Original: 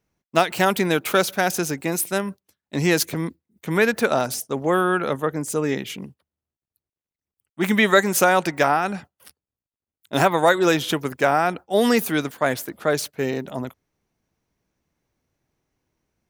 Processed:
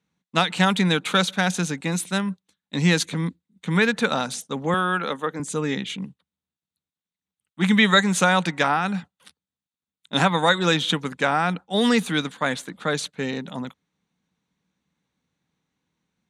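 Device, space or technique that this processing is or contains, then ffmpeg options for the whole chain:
car door speaker: -filter_complex "[0:a]highpass=100,equalizer=f=110:t=q:w=4:g=-9,equalizer=f=180:t=q:w=4:g=8,equalizer=f=370:t=q:w=4:g=-9,equalizer=f=640:t=q:w=4:g=-9,equalizer=f=3700:t=q:w=4:g=8,equalizer=f=5200:t=q:w=4:g=-7,lowpass=f=8800:w=0.5412,lowpass=f=8800:w=1.3066,asettb=1/sr,asplit=3[s0][s1][s2];[s0]atrim=end=4.744[s3];[s1]atrim=start=4.74:end=5.4,asetpts=PTS-STARTPTS,afade=t=in:d=0.004:c=qsin,afade=t=out:st=0.656:d=0.004:c=qsin,highpass=260[s4];[s2]atrim=start=5.396[s5];[s3][s4]acrossfade=d=0.004:c1=hsin:c2=qsin[s6];[s6][s5]acrossfade=d=0.004:c1=qsin:c2=hsin"

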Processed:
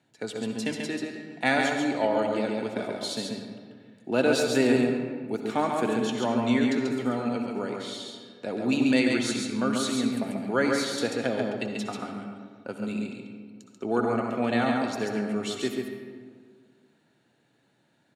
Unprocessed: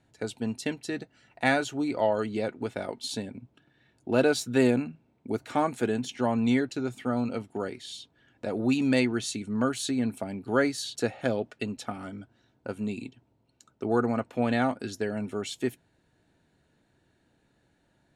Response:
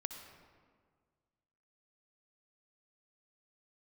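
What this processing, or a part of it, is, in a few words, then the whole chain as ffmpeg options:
PA in a hall: -filter_complex "[0:a]highpass=f=130:w=0.5412,highpass=f=130:w=1.3066,equalizer=f=3200:t=o:w=1.5:g=3,aecho=1:1:138:0.631[s0];[1:a]atrim=start_sample=2205[s1];[s0][s1]afir=irnorm=-1:irlink=0,volume=1.19"

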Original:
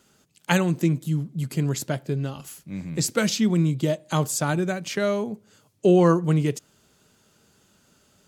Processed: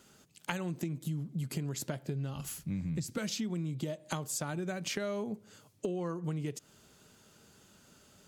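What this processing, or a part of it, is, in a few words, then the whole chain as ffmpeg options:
serial compression, leveller first: -filter_complex "[0:a]asettb=1/sr,asplit=3[s0][s1][s2];[s0]atrim=end=1.974[s3];[s1]atrim=start=1.97:end=3.18,asetpts=PTS-STARTPTS,afade=t=in:d=0.004:c=qsin,afade=t=out:st=1.206:d=0.004:c=qsin,asubboost=boost=10:cutoff=210[s4];[s2]atrim=start=3.176[s5];[s3][s4]acrossfade=d=0.004:c1=hsin:c2=qsin[s6];[s6][s5]acrossfade=d=0.004:c1=qsin:c2=hsin,acompressor=threshold=0.0631:ratio=2.5,acompressor=threshold=0.0224:ratio=6"

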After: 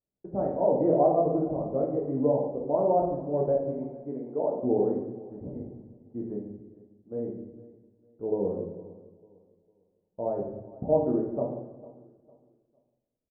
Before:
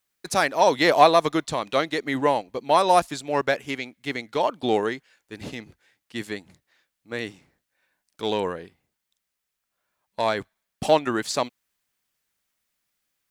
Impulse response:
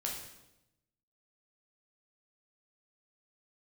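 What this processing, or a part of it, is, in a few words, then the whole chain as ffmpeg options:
next room: -filter_complex "[0:a]asettb=1/sr,asplit=3[s0][s1][s2];[s0]atrim=end=3.724[s3];[s1]atrim=start=3.72:end=4.47,asetpts=PTS-STARTPTS,afade=t=in:d=0.004:c=qsin,afade=t=out:st=0.746:d=0.004:c=qsin,highpass=210[s4];[s2]atrim=start=4.466[s5];[s3][s4]acrossfade=d=0.004:c1=hsin:c2=qsin[s6];[s6][s5]acrossfade=d=0.004:c1=qsin:c2=hsin,asettb=1/sr,asplit=3[s7][s8][s9];[s7]atrim=end=8.234[s10];[s8]atrim=start=8.23:end=10.29,asetpts=PTS-STARTPTS,afade=t=in:d=0.004:c=qsin,afade=t=out:st=2.056:d=0.004:c=qsin,equalizer=f=1500:w=1.5:g=-4[s11];[s9]atrim=start=10.286[s12];[s10][s11]acrossfade=d=0.004:c1=hsin:c2=qsin[s13];[s13][s12]acrossfade=d=0.004:c1=qsin:c2=hsin,lowpass=f=570:w=0.5412,lowpass=f=570:w=1.3066,aecho=1:1:453|906|1359:0.106|0.0328|0.0102[s14];[1:a]atrim=start_sample=2205[s15];[s14][s15]afir=irnorm=-1:irlink=0,volume=0.841"

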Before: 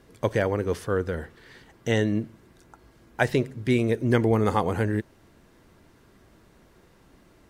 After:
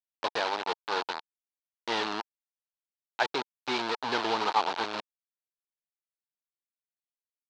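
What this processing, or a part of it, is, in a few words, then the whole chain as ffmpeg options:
hand-held game console: -af "acrusher=bits=3:mix=0:aa=0.000001,highpass=500,equalizer=f=530:t=q:w=4:g=-7,equalizer=f=900:t=q:w=4:g=8,equalizer=f=2000:t=q:w=4:g=-5,equalizer=f=4100:t=q:w=4:g=5,lowpass=f=4800:w=0.5412,lowpass=f=4800:w=1.3066,volume=0.668"

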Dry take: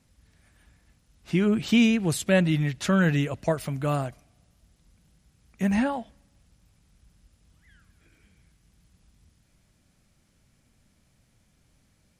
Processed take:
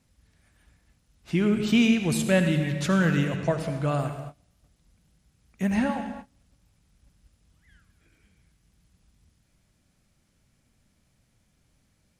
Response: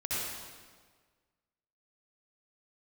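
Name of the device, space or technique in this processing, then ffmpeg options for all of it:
keyed gated reverb: -filter_complex "[0:a]asplit=3[s0][s1][s2];[1:a]atrim=start_sample=2205[s3];[s1][s3]afir=irnorm=-1:irlink=0[s4];[s2]apad=whole_len=537599[s5];[s4][s5]sidechaingate=range=0.0224:threshold=0.00178:ratio=16:detection=peak,volume=0.299[s6];[s0][s6]amix=inputs=2:normalize=0,asettb=1/sr,asplit=3[s7][s8][s9];[s7]atrim=end=3.364[s10];[s8]atrim=start=3.36:end=3.99,asetpts=PTS-STARTPTS,afade=t=in:d=0.004:c=qsin,afade=t=out:st=0.626:d=0.004:c=qsin,lowpass=8000[s11];[s9]atrim=start=3.986[s12];[s10][s11]acrossfade=d=0.004:c1=hsin:c2=qsin[s13];[s13][s12]acrossfade=d=0.004:c1=qsin:c2=hsin,volume=0.75"

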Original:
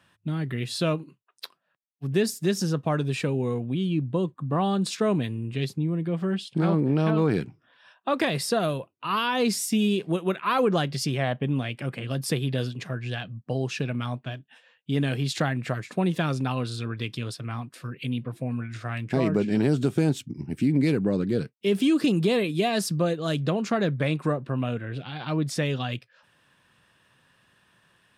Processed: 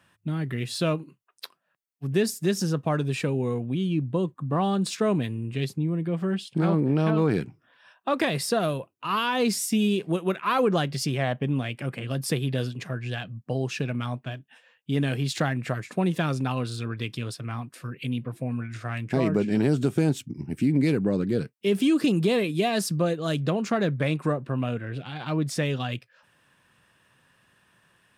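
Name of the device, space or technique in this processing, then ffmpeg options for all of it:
exciter from parts: -filter_complex "[0:a]asplit=2[s0][s1];[s1]highpass=f=2600:p=1,asoftclip=type=tanh:threshold=0.0119,highpass=f=3000:w=0.5412,highpass=f=3000:w=1.3066,volume=0.376[s2];[s0][s2]amix=inputs=2:normalize=0"

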